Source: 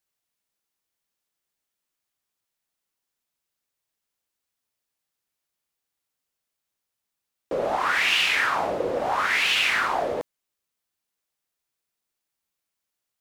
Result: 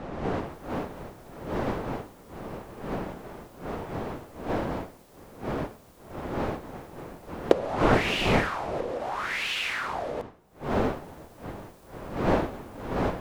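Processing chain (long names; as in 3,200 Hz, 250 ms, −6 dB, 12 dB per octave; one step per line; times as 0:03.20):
camcorder AGC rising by 55 dB per second
wind on the microphone 630 Hz −24 dBFS
level −8 dB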